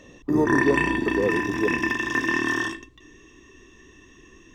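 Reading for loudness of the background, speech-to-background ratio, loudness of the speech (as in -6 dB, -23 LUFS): -24.0 LUFS, -2.5 dB, -26.5 LUFS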